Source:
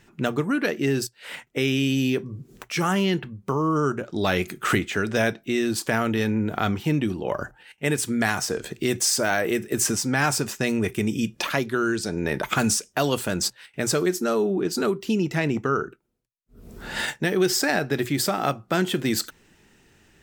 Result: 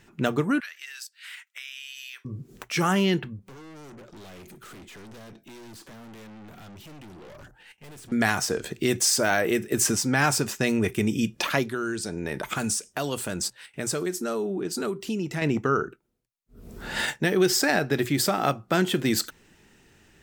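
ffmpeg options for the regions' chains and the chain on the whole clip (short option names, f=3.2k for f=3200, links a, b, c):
-filter_complex "[0:a]asettb=1/sr,asplit=3[a][b][c];[a]atrim=end=0.604[d];[b]atrim=start=0.6:end=2.25,asetpts=PTS-STARTPTS,afade=t=in:d=0.004:c=qsin,afade=t=out:st=1.646:d=0.004:c=qsin,highpass=f=1.4k:w=0.5412,highpass=f=1.4k:w=1.3066,acompressor=threshold=-38dB:ratio=3:attack=3.2:release=140:knee=1:detection=peak[e];[c]atrim=start=2.246[f];[d][e]acrossfade=d=0.004:c1=hsin:c2=qsin[g];[g][f]acrossfade=d=0.004:c1=qsin:c2=hsin,asettb=1/sr,asplit=3[h][i][j];[h]atrim=end=3.394[k];[i]atrim=start=3.39:end=8.12,asetpts=PTS-STARTPTS,afade=t=in:d=0.004:c=qsin,afade=t=out:st=4.726:d=0.004:c=qsin,acrossover=split=460|3100[l][m][n];[l]acompressor=threshold=-27dB:ratio=4[o];[m]acompressor=threshold=-39dB:ratio=4[p];[n]acompressor=threshold=-41dB:ratio=4[q];[o][p][q]amix=inputs=3:normalize=0,aeval=exprs='(tanh(158*val(0)+0.2)-tanh(0.2))/158':c=same[r];[j]atrim=start=8.116[s];[k][r]acrossfade=d=0.004:c1=hsin:c2=qsin[t];[t][s]acrossfade=d=0.004:c1=qsin:c2=hsin,asettb=1/sr,asplit=3[u][v][w];[u]atrim=end=11.664[x];[v]atrim=start=11.66:end=15.42,asetpts=PTS-STARTPTS,afade=t=in:d=0.004:c=qsin,afade=t=out:st=3.756:d=0.004:c=qsin,equalizer=f=8.8k:w=1.9:g=5.5,acompressor=threshold=-35dB:ratio=1.5:attack=3.2:release=140:knee=1:detection=peak[y];[w]atrim=start=15.416[z];[x][y]acrossfade=d=0.004:c1=hsin:c2=qsin[aa];[aa][z]acrossfade=d=0.004:c1=qsin:c2=hsin"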